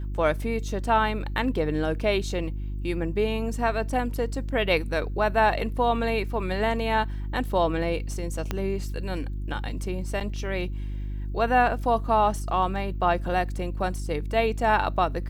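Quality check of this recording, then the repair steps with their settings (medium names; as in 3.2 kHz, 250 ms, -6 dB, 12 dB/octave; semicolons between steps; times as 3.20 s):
hum 50 Hz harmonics 7 -31 dBFS
8.51 s: pop -13 dBFS
10.20–10.21 s: dropout 7 ms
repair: de-click; de-hum 50 Hz, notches 7; interpolate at 10.20 s, 7 ms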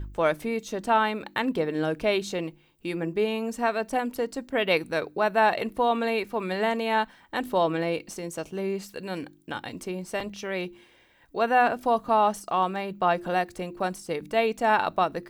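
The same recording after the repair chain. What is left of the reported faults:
nothing left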